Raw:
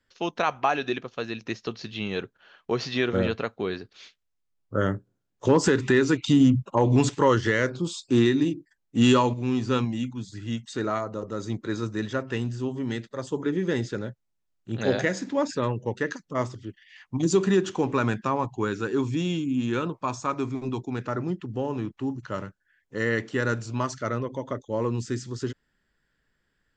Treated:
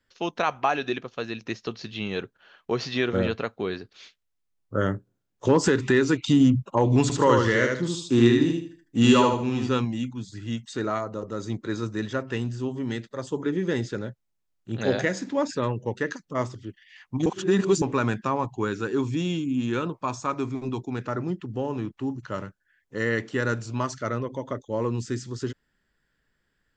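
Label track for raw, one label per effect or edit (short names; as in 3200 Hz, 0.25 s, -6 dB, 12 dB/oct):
7.020000	9.690000	feedback echo 77 ms, feedback 30%, level -3 dB
17.260000	17.820000	reverse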